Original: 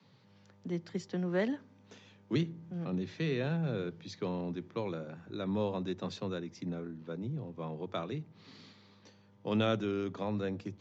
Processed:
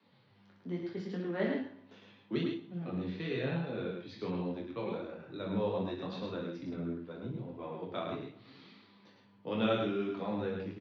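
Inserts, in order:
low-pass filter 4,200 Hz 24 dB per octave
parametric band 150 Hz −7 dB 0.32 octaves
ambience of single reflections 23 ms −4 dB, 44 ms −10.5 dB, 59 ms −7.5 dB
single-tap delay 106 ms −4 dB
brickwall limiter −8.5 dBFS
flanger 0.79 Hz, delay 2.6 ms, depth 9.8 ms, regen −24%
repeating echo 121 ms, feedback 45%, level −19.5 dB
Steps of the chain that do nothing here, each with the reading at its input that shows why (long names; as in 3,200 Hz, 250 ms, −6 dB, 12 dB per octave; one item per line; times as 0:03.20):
brickwall limiter −8.5 dBFS: peak of its input −15.5 dBFS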